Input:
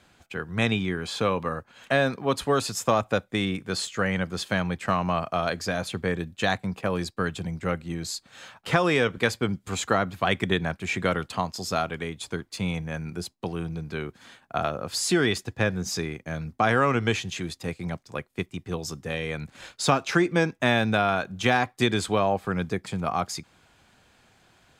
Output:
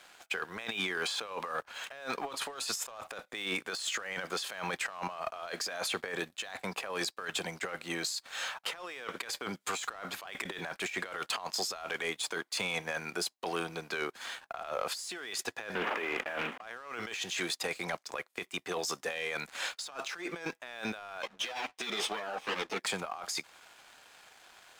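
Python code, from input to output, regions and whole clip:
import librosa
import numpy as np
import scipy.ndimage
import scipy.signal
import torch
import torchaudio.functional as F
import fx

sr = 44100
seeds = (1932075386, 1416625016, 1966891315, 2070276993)

y = fx.chain(x, sr, fx.cvsd(bps=16000),
    fx.highpass(hz=210.0, slope=24),
    fx.env_flatten(amount_pct=50), at=(15.75, 16.62))
y = fx.chain(y, sr, fx.lower_of_two(delay_ms=0.34),
    fx.bandpass_edges(low_hz=160.0, high_hz=5900.0),
    fx.ensemble(), at=(21.22, 22.8))
y = scipy.signal.sosfilt(scipy.signal.butter(2, 640.0, 'highpass', fs=sr, output='sos'), y)
y = fx.over_compress(y, sr, threshold_db=-39.0, ratio=-1.0)
y = fx.leveller(y, sr, passes=2)
y = y * librosa.db_to_amplitude(-6.0)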